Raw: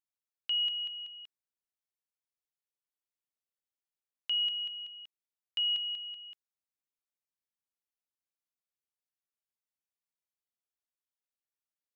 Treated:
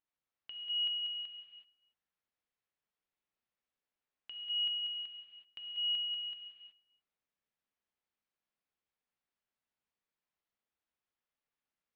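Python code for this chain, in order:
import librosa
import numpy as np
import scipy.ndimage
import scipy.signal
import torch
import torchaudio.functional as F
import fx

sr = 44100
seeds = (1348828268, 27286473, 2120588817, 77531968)

p1 = scipy.signal.sosfilt(scipy.signal.butter(2, 2900.0, 'lowpass', fs=sr, output='sos'), x)
p2 = fx.over_compress(p1, sr, threshold_db=-39.0, ratio=-0.5)
p3 = p2 + fx.echo_single(p2, sr, ms=294, db=-23.5, dry=0)
y = fx.rev_gated(p3, sr, seeds[0], gate_ms=400, shape='flat', drr_db=0.5)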